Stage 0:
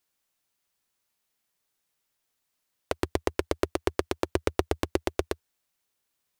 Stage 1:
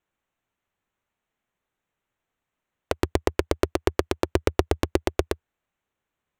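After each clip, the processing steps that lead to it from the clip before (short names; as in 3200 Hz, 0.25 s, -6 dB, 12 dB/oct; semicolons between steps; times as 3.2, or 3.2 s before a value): Wiener smoothing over 9 samples; low shelf 160 Hz +4 dB; gain +3.5 dB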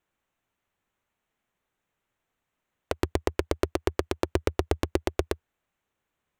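limiter -9 dBFS, peak gain reduction 7.5 dB; gain +1.5 dB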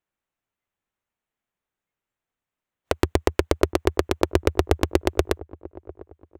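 spectral noise reduction 13 dB; dark delay 0.7 s, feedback 32%, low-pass 880 Hz, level -18 dB; gain +6 dB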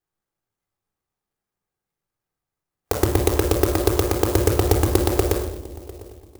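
reverb RT60 0.75 s, pre-delay 3 ms, DRR 2 dB; clock jitter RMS 0.097 ms; gain -1.5 dB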